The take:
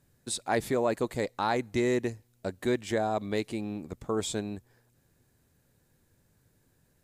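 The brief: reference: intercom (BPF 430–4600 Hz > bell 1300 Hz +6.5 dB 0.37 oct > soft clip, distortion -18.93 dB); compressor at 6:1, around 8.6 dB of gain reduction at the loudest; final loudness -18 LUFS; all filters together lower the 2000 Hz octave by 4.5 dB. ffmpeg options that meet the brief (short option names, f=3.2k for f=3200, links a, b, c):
-af "equalizer=f=2k:t=o:g=-7.5,acompressor=threshold=-33dB:ratio=6,highpass=430,lowpass=4.6k,equalizer=f=1.3k:t=o:w=0.37:g=6.5,asoftclip=threshold=-27.5dB,volume=24.5dB"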